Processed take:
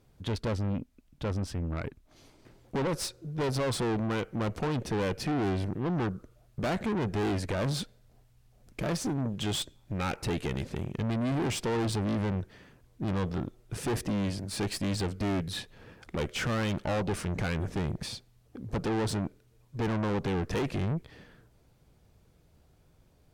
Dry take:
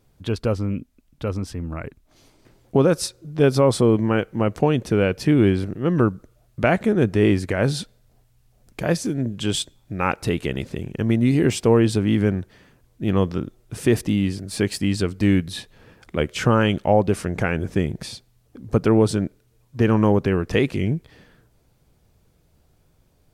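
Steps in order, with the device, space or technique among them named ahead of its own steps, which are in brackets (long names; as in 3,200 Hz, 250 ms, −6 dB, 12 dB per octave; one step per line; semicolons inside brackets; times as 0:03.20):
tube preamp driven hard (tube saturation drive 27 dB, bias 0.45; high-shelf EQ 6,800 Hz −5 dB)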